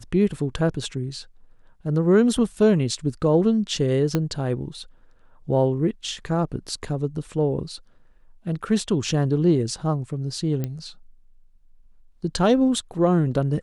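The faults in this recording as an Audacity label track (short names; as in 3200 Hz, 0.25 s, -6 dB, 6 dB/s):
4.150000	4.150000	pop -9 dBFS
10.640000	10.640000	pop -15 dBFS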